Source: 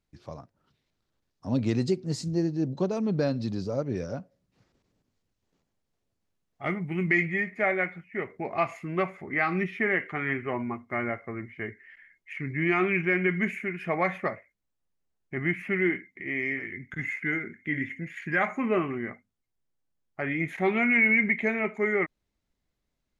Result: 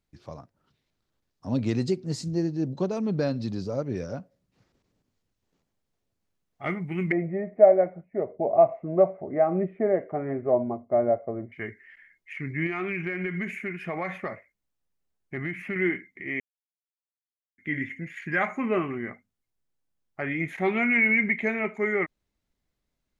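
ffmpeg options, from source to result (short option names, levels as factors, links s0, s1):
-filter_complex "[0:a]asettb=1/sr,asplit=3[s0][s1][s2];[s0]atrim=end=7.124[s3];[s1]atrim=start=7.12:end=11.52,asetpts=PTS-STARTPTS,afade=t=in:d=0.004:c=qsin,afade=t=out:st=4.396:d=0.004:c=qsin,lowpass=f=620:t=q:w=6[s4];[s2]atrim=start=11.516[s5];[s3][s4]acrossfade=d=0.004:c1=hsin:c2=qsin[s6];[s6][s5]acrossfade=d=0.004:c1=qsin:c2=hsin,asettb=1/sr,asplit=3[s7][s8][s9];[s7]atrim=end=12.664[s10];[s8]atrim=start=12.66:end=15.76,asetpts=PTS-STARTPTS,afade=t=in:d=0.004:c=qsin,afade=t=out:st=3.096:d=0.004:c=qsin,acompressor=threshold=0.0501:ratio=6:attack=3.2:release=140:knee=1:detection=peak[s11];[s9]atrim=start=15.756[s12];[s10][s11]acrossfade=d=0.004:c1=hsin:c2=qsin[s13];[s13][s12]acrossfade=d=0.004:c1=qsin:c2=hsin,asplit=3[s14][s15][s16];[s14]atrim=end=16.4,asetpts=PTS-STARTPTS,afade=t=out:st=16.396:d=0.004:c=hsin[s17];[s15]atrim=start=16.4:end=17.58,asetpts=PTS-STARTPTS,volume=0[s18];[s16]atrim=start=17.58,asetpts=PTS-STARTPTS,afade=t=in:d=0.004:c=hsin[s19];[s17][s18][s19]concat=n=3:v=0:a=1"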